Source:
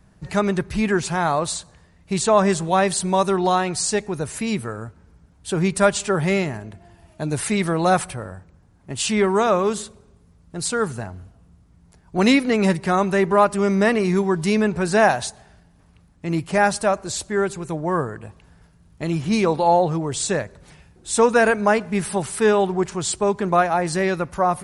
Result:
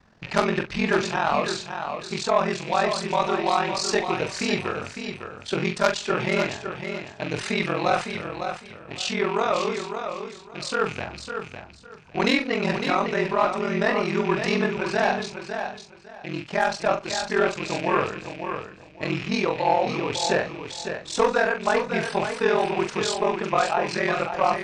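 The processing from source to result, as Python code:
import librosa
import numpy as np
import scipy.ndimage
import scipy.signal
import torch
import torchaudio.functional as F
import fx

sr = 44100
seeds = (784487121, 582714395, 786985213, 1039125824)

y = fx.rattle_buzz(x, sr, strikes_db=-32.0, level_db=-25.0)
y = scipy.signal.sosfilt(scipy.signal.butter(4, 5600.0, 'lowpass', fs=sr, output='sos'), y)
y = fx.low_shelf(y, sr, hz=280.0, db=-12.0)
y = fx.rider(y, sr, range_db=4, speed_s=0.5)
y = fx.cheby_harmonics(y, sr, harmonics=(2, 3, 5, 7), levels_db=(-23, -9, -13, -25), full_scale_db=-5.5)
y = y * np.sin(2.0 * np.pi * 21.0 * np.arange(len(y)) / sr)
y = fx.doubler(y, sr, ms=41.0, db=-8.0)
y = fx.echo_feedback(y, sr, ms=555, feedback_pct=21, wet_db=-7.5)
y = F.gain(torch.from_numpy(y), 5.5).numpy()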